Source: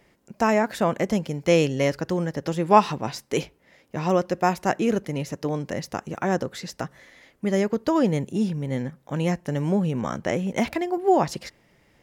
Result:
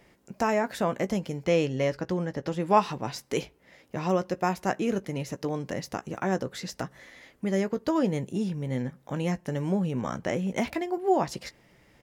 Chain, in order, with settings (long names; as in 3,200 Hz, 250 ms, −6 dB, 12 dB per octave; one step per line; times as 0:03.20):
0:01.44–0:02.60: high-shelf EQ 7,500 Hz −11 dB
in parallel at +2 dB: downward compressor, threshold −35 dBFS, peak gain reduction 23.5 dB
on the sum: double-tracking delay 16 ms −12 dB
level −6.5 dB